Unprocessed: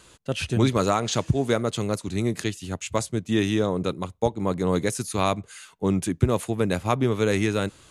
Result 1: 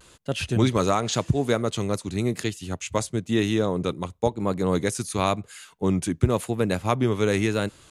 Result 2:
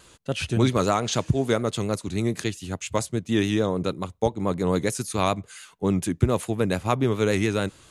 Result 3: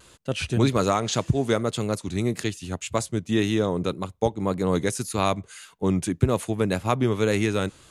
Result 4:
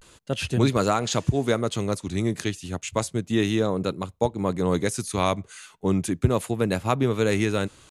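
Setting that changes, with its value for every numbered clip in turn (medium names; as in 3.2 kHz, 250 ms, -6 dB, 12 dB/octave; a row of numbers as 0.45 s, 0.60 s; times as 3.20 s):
vibrato, rate: 0.95 Hz, 7 Hz, 1.8 Hz, 0.33 Hz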